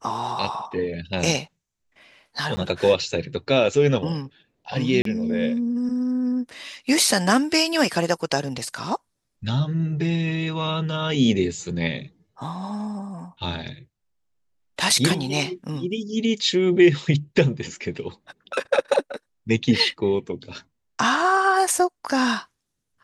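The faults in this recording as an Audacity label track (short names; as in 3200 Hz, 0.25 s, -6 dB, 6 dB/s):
2.560000	2.570000	gap 10 ms
5.020000	5.050000	gap 33 ms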